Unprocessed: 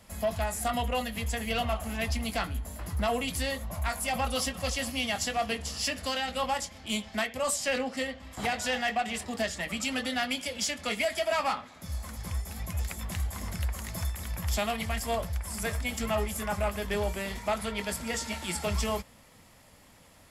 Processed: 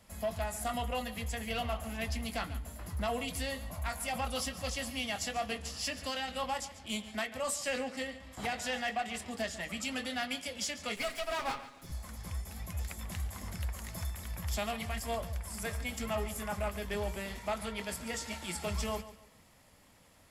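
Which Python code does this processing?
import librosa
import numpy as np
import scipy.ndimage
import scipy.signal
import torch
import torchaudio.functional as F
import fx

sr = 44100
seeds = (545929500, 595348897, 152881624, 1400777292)

y = fx.lower_of_two(x, sr, delay_ms=7.3, at=(10.96, 11.92))
y = fx.echo_feedback(y, sr, ms=142, feedback_pct=30, wet_db=-15.0)
y = y * librosa.db_to_amplitude(-5.5)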